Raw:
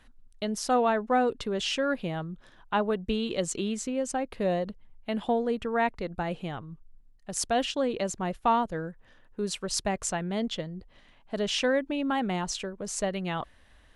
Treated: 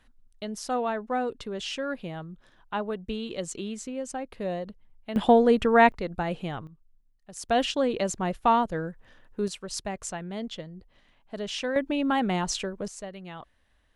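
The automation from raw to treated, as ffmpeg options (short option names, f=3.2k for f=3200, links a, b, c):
-af "asetnsamples=n=441:p=0,asendcmd='5.16 volume volume 8.5dB;5.92 volume volume 2dB;6.67 volume volume -9dB;7.49 volume volume 2.5dB;9.48 volume volume -4.5dB;11.76 volume volume 3dB;12.88 volume volume -9.5dB',volume=-4dB"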